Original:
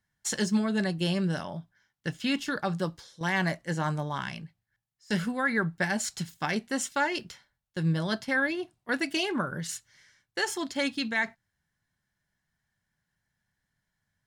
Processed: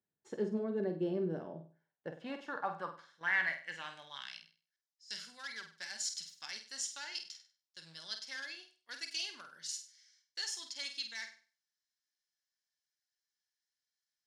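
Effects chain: one-sided clip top -22.5 dBFS; band-pass sweep 390 Hz -> 5.2 kHz, 1.59–4.57 s; on a send: flutter echo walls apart 8.4 m, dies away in 0.38 s

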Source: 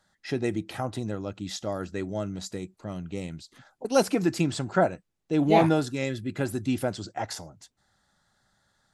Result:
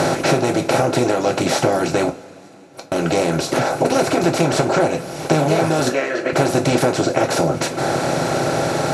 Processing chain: spectral levelling over time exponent 0.2; reverb removal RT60 1.4 s; compression, threshold -21 dBFS, peak gain reduction 9.5 dB; 2.09–2.92 s: inverted gate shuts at -23 dBFS, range -32 dB; 5.89–6.33 s: cabinet simulation 420–5600 Hz, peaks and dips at 540 Hz +4 dB, 850 Hz -10 dB, 1.8 kHz +8 dB, 3.6 kHz -9 dB, 5.1 kHz -8 dB; reverberation, pre-delay 3 ms, DRR 1.5 dB; trim +6 dB

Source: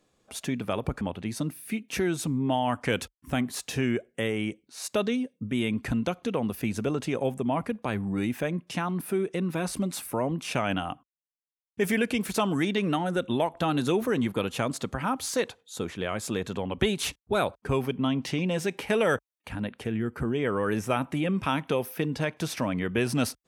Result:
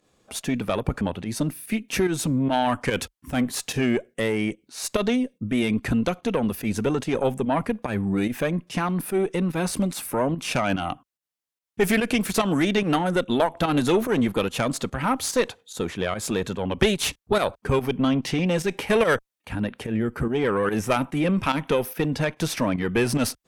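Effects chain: Chebyshev shaper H 4 -16 dB, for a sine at -10 dBFS; volume shaper 145 bpm, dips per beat 1, -10 dB, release 101 ms; trim +5.5 dB

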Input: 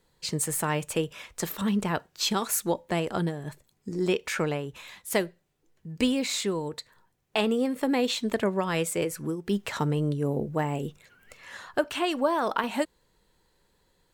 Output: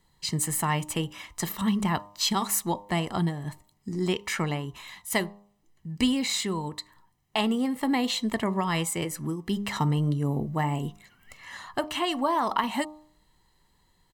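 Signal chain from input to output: comb 1 ms, depth 60%; de-hum 101.6 Hz, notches 12

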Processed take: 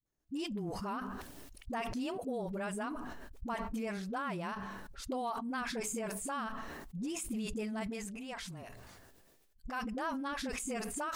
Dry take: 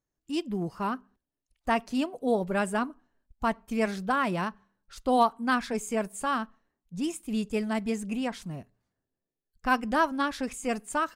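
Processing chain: compression 4:1, threshold -35 dBFS, peak gain reduction 15 dB; 7.88–9.81 s: peaking EQ 210 Hz -7.5 dB 2.5 oct; phase dispersion highs, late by 61 ms, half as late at 310 Hz; decay stretcher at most 26 dB/s; trim -1.5 dB

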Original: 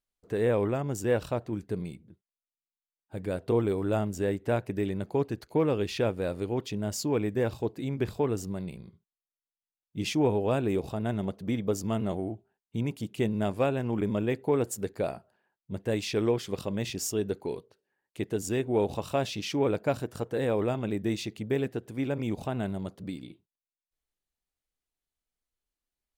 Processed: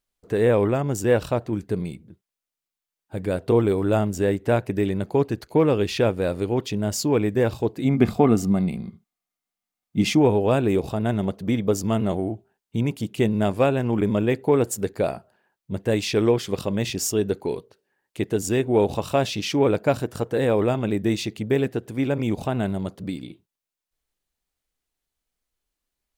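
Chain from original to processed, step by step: 7.84–10.18 s: small resonant body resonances 220/720/1200/2100 Hz, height 12 dB -> 9 dB, ringing for 35 ms; trim +7 dB

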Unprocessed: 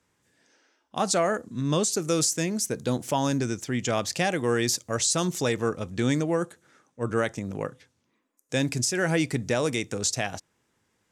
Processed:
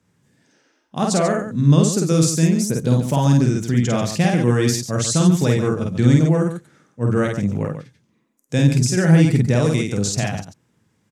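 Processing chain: peaking EQ 150 Hz +13.5 dB 1.7 oct; on a send: loudspeakers at several distances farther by 17 m -2 dB, 48 m -9 dB

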